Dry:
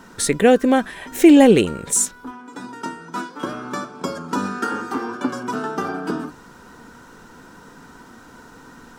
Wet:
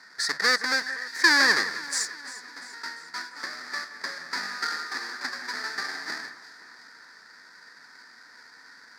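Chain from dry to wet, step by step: square wave that keeps the level; two resonant band-passes 2.9 kHz, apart 1.4 oct; echo whose repeats swap between lows and highs 173 ms, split 2.5 kHz, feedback 70%, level -13 dB; trim +3 dB

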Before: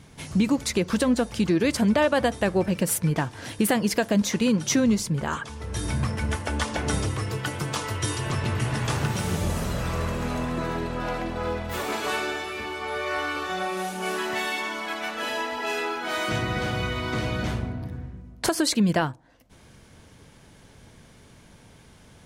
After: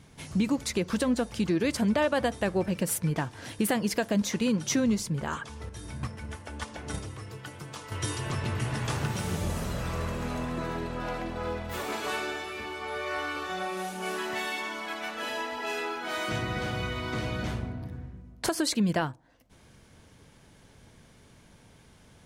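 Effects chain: 5.69–7.92 s: gate -23 dBFS, range -8 dB; trim -4.5 dB

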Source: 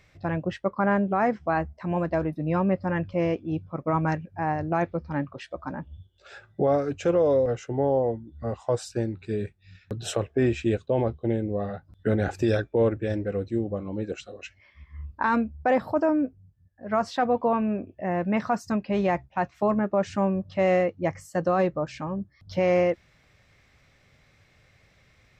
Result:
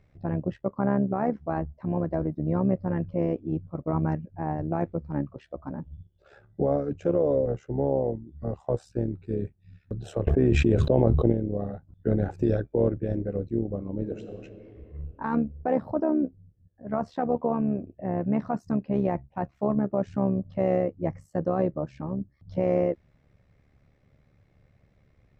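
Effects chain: 1.97–2.65 s: band-stop 2.6 kHz, Q 7.2; 7.83–8.62 s: treble shelf 5.8 kHz +10 dB; AM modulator 71 Hz, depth 50%; tilt shelf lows +9.5 dB, about 1.1 kHz; 10.27–11.32 s: level flattener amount 100%; 13.93–14.43 s: reverb throw, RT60 3 s, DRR 5.5 dB; trim -5.5 dB

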